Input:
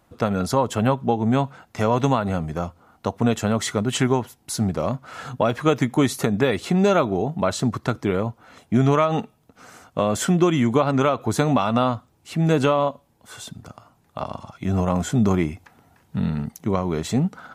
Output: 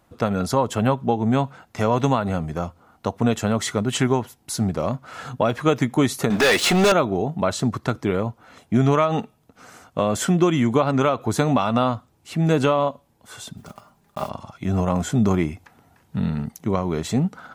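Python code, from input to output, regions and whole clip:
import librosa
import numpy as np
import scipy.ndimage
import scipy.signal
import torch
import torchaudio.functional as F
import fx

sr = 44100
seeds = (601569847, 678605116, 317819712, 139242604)

y = fx.chain(x, sr, fx.highpass(hz=1200.0, slope=6),
    fx.high_shelf(hz=9300.0, db=-6.0),
    fx.leveller(passes=5), at=(6.3, 6.92))
y = fx.chain(y, sr, fx.block_float(bits=5),
    fx.comb(ms=5.0, depth=0.47), at=(13.57, 14.31))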